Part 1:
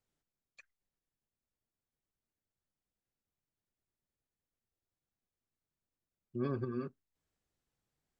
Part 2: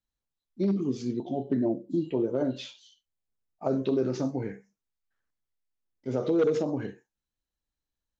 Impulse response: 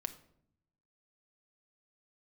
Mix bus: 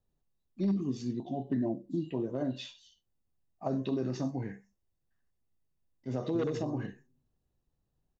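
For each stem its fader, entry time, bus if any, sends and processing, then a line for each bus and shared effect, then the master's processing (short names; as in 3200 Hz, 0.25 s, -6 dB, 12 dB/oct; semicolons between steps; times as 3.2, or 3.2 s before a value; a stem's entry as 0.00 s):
+1.5 dB, 0.00 s, send -7.5 dB, low shelf 120 Hz +10 dB; compressor, threshold -43 dBFS, peak gain reduction 14 dB; running mean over 23 samples
-4.0 dB, 0.00 s, no send, notch 880 Hz, Q 12; comb 1.1 ms, depth 50%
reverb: on, RT60 0.65 s, pre-delay 5 ms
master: dry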